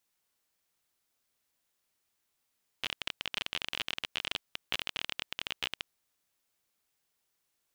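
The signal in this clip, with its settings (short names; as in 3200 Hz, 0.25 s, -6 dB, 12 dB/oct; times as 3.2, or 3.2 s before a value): random clicks 28/s -15.5 dBFS 3.04 s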